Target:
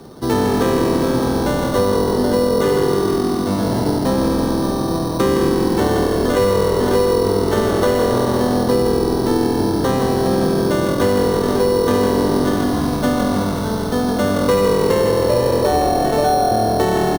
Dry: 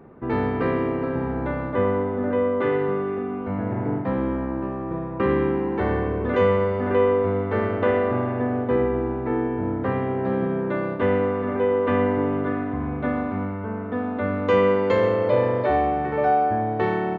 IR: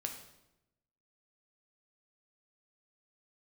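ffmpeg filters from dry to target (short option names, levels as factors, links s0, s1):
-filter_complex "[0:a]asplit=8[s0][s1][s2][s3][s4][s5][s6][s7];[s1]adelay=157,afreqshift=-42,volume=0.501[s8];[s2]adelay=314,afreqshift=-84,volume=0.266[s9];[s3]adelay=471,afreqshift=-126,volume=0.141[s10];[s4]adelay=628,afreqshift=-168,volume=0.075[s11];[s5]adelay=785,afreqshift=-210,volume=0.0394[s12];[s6]adelay=942,afreqshift=-252,volume=0.0209[s13];[s7]adelay=1099,afreqshift=-294,volume=0.0111[s14];[s0][s8][s9][s10][s11][s12][s13][s14]amix=inputs=8:normalize=0,acrusher=samples=9:mix=1:aa=0.000001,acrossover=split=190|1800[s15][s16][s17];[s15]acompressor=threshold=0.0224:ratio=4[s18];[s16]acompressor=threshold=0.0794:ratio=4[s19];[s17]acompressor=threshold=0.0126:ratio=4[s20];[s18][s19][s20]amix=inputs=3:normalize=0,volume=2.66"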